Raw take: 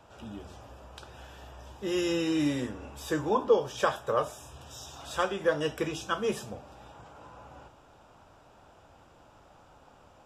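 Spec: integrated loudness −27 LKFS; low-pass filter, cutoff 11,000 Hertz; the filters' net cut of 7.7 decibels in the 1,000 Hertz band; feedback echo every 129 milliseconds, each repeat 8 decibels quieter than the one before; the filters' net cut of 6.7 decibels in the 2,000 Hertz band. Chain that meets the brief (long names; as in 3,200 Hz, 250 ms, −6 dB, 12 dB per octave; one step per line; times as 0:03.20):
low-pass filter 11,000 Hz
parametric band 1,000 Hz −8 dB
parametric band 2,000 Hz −6 dB
repeating echo 129 ms, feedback 40%, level −8 dB
level +5 dB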